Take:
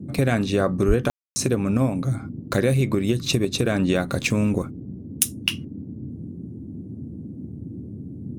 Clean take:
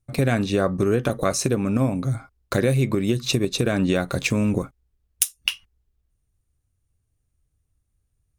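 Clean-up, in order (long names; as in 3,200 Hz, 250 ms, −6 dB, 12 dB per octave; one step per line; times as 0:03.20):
0:00.87–0:00.99: high-pass filter 140 Hz 24 dB per octave
ambience match 0:01.10–0:01.36
noise reduction from a noise print 30 dB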